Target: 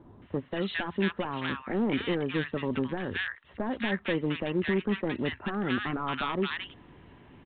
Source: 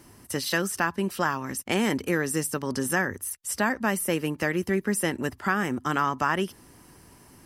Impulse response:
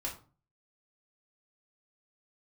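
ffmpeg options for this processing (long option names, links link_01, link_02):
-filter_complex "[0:a]asplit=2[link_01][link_02];[link_02]alimiter=limit=-19.5dB:level=0:latency=1:release=288,volume=-1dB[link_03];[link_01][link_03]amix=inputs=2:normalize=0,aeval=exprs='0.168*(abs(mod(val(0)/0.168+3,4)-2)-1)':channel_layout=same,acrossover=split=1200[link_04][link_05];[link_05]adelay=220[link_06];[link_04][link_06]amix=inputs=2:normalize=0,volume=-4.5dB" -ar 8000 -c:a pcm_mulaw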